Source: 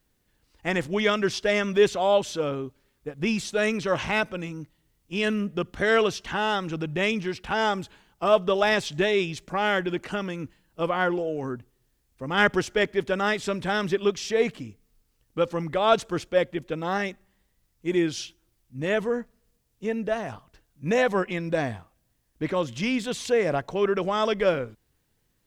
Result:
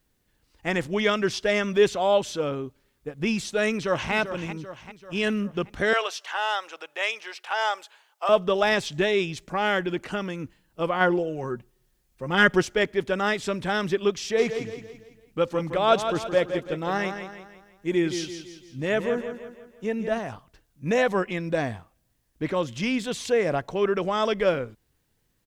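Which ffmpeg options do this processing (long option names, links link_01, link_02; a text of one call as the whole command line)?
ffmpeg -i in.wav -filter_complex "[0:a]asplit=2[link_01][link_02];[link_02]afade=type=in:start_time=3.71:duration=0.01,afade=type=out:start_time=4.13:duration=0.01,aecho=0:1:390|780|1170|1560|1950|2340:0.316228|0.173925|0.0956589|0.0526124|0.0289368|0.0159152[link_03];[link_01][link_03]amix=inputs=2:normalize=0,asettb=1/sr,asplit=3[link_04][link_05][link_06];[link_04]atrim=end=5.934[link_07];[link_05]atrim=start=5.93:end=8.29,asetpts=PTS-STARTPTS,afade=type=in:duration=0.004:curve=qsin,afade=type=out:start_time=2.356:duration=0.004:curve=qsin,highpass=frequency=590:width=0.5412,highpass=frequency=590:width=1.3066[link_08];[link_06]atrim=start=8.286[link_09];[link_07][link_08]acrossfade=duration=0.004:curve1=hsin:curve2=qsin[link_10];[link_10][link_09]acrossfade=duration=0.004:curve1=qsin:curve2=hsin,asettb=1/sr,asplit=3[link_11][link_12][link_13];[link_11]atrim=end=11.004[link_14];[link_12]atrim=start=11:end=12.67,asetpts=PTS-STARTPTS,afade=type=in:duration=0.004:curve=qsin,afade=type=out:start_time=1.666:duration=0.004:curve=qsin,aecho=1:1:5.5:0.56,atrim=end_sample=73647[link_15];[link_13]atrim=start=12.666[link_16];[link_14][link_15]acrossfade=duration=0.004:curve1=hsin:curve2=qsin[link_17];[link_17][link_16]acrossfade=duration=0.004:curve1=qsin:curve2=hsin,asplit=3[link_18][link_19][link_20];[link_18]afade=type=out:start_time=14.37:duration=0.02[link_21];[link_19]aecho=1:1:167|334|501|668|835:0.376|0.169|0.0761|0.0342|0.0154,afade=type=in:start_time=14.37:duration=0.02,afade=type=out:start_time=20.18:duration=0.02[link_22];[link_20]afade=type=in:start_time=20.18:duration=0.02[link_23];[link_21][link_22][link_23]amix=inputs=3:normalize=0" out.wav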